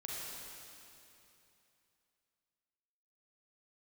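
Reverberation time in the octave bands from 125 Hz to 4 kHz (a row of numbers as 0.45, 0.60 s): 3.2, 3.0, 3.0, 2.9, 2.9, 2.8 s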